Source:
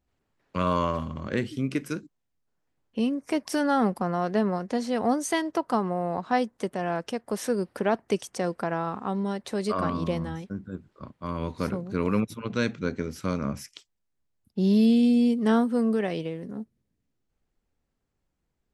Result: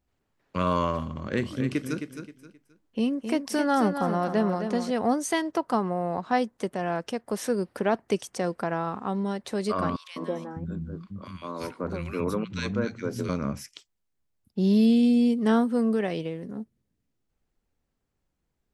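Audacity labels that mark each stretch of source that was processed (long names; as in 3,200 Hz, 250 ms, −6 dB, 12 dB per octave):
1.110000	4.910000	repeating echo 264 ms, feedback 29%, level −8 dB
9.960000	13.290000	three-band delay without the direct sound highs, mids, lows 200/600 ms, splits 210/1,500 Hz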